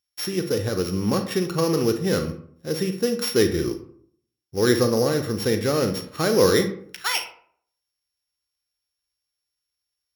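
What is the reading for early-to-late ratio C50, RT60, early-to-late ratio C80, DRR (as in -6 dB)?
10.0 dB, 0.60 s, 14.0 dB, 7.0 dB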